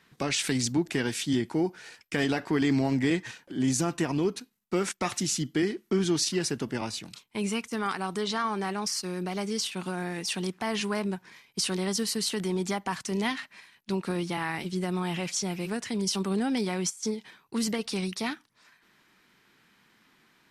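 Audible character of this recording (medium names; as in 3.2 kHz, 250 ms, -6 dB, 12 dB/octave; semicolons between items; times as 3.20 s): noise floor -66 dBFS; spectral tilt -4.0 dB/octave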